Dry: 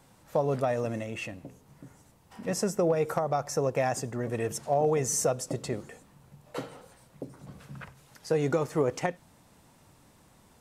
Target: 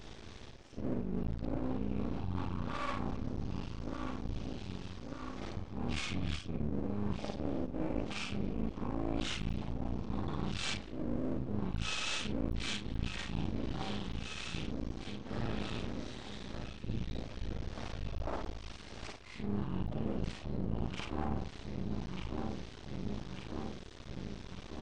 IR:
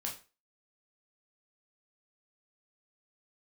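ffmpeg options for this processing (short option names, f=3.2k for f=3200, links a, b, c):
-filter_complex "[0:a]afftfilt=real='re':imag='-im':win_size=2048:overlap=0.75,asplit=2[a][b];[b]aecho=0:1:511|1022|1533|2044|2555:0.126|0.0705|0.0395|0.0221|0.0124[c];[a][c]amix=inputs=2:normalize=0,asplit=4[d][e][f][g];[e]asetrate=22050,aresample=44100,atempo=2,volume=-8dB[h];[f]asetrate=52444,aresample=44100,atempo=0.840896,volume=-14dB[i];[g]asetrate=58866,aresample=44100,atempo=0.749154,volume=-18dB[j];[d][h][i][j]amix=inputs=4:normalize=0,aeval=exprs='max(val(0),0)':c=same,asetrate=18846,aresample=44100,areverse,acompressor=threshold=-48dB:ratio=8,areverse,volume=16.5dB"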